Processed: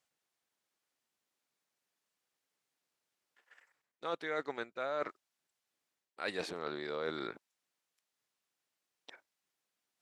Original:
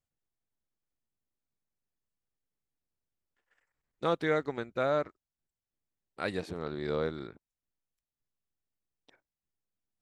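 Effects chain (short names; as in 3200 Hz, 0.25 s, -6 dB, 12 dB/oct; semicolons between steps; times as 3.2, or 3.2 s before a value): weighting filter A; reverse; compressor 5:1, threshold -45 dBFS, peak gain reduction 17.5 dB; reverse; gain +9.5 dB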